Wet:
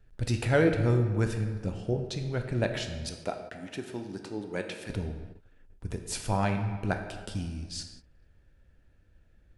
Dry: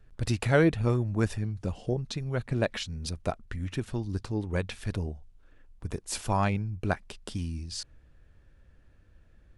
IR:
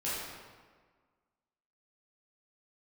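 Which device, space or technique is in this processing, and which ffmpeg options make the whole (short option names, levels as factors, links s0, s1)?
keyed gated reverb: -filter_complex "[0:a]asettb=1/sr,asplit=3[s0][s1][s2];[s0]atrim=end=3.064[s3];[s1]atrim=start=3.06:end=4.9,asetpts=PTS-STARTPTS,afade=t=in:d=0.004:c=qsin,afade=t=out:st=1.836:d=0.004:c=qsin,highpass=250[s4];[s2]atrim=start=4.896[s5];[s3][s4]acrossfade=d=0.004:c1=hsin:c2=qsin[s6];[s6][s5]acrossfade=d=0.004:c1=qsin:c2=hsin,equalizer=f=1100:w=7:g=-8,asplit=3[s7][s8][s9];[1:a]atrim=start_sample=2205[s10];[s8][s10]afir=irnorm=-1:irlink=0[s11];[s9]apad=whole_len=422435[s12];[s11][s12]sidechaingate=range=0.0224:threshold=0.00282:ratio=16:detection=peak,volume=0.355[s13];[s7][s13]amix=inputs=2:normalize=0,volume=0.708"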